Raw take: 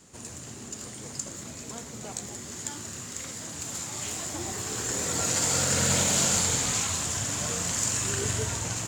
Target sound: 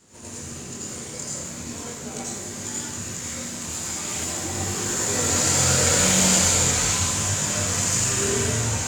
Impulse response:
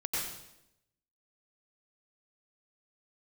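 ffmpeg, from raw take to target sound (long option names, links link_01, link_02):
-filter_complex "[0:a]flanger=delay=19.5:depth=7:speed=0.41[link_01];[1:a]atrim=start_sample=2205,asetrate=48510,aresample=44100[link_02];[link_01][link_02]afir=irnorm=-1:irlink=0,volume=4.5dB"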